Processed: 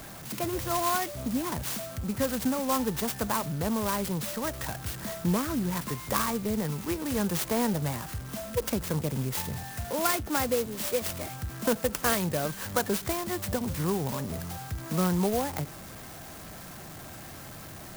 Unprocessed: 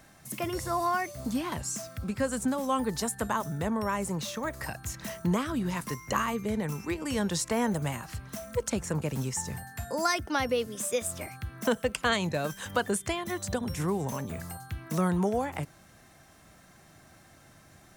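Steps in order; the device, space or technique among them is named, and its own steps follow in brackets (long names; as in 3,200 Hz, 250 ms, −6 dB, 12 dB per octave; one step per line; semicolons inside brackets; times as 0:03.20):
early CD player with a faulty converter (converter with a step at zero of −39 dBFS; converter with an unsteady clock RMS 0.088 ms)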